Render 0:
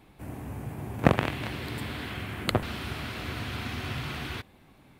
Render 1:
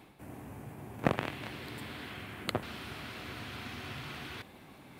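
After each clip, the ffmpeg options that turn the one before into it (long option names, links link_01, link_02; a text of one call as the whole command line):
ffmpeg -i in.wav -af "highpass=frequency=150:poles=1,areverse,acompressor=mode=upward:threshold=-35dB:ratio=2.5,areverse,volume=-6.5dB" out.wav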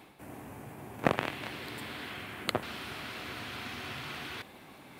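ffmpeg -i in.wav -af "lowshelf=frequency=220:gain=-7.5,volume=3.5dB" out.wav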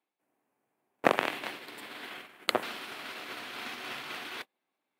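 ffmpeg -i in.wav -af "highpass=310,agate=range=-35dB:threshold=-41dB:ratio=16:detection=peak,volume=4dB" out.wav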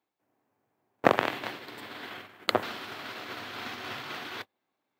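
ffmpeg -i in.wav -af "equalizer=frequency=100:width_type=o:width=0.67:gain=12,equalizer=frequency=2500:width_type=o:width=0.67:gain=-4,equalizer=frequency=10000:width_type=o:width=0.67:gain=-11,volume=3dB" out.wav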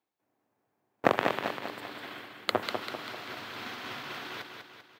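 ffmpeg -i in.wav -af "aecho=1:1:196|392|588|784|980|1176:0.501|0.256|0.13|0.0665|0.0339|0.0173,volume=-2.5dB" out.wav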